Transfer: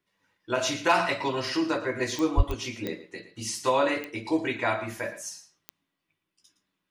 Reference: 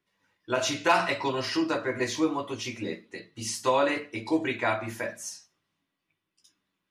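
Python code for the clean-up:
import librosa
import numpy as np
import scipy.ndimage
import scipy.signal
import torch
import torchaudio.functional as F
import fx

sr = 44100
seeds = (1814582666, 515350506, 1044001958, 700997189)

y = fx.fix_declick_ar(x, sr, threshold=10.0)
y = fx.fix_deplosive(y, sr, at_s=(2.36,))
y = fx.fix_echo_inverse(y, sr, delay_ms=114, level_db=-14.0)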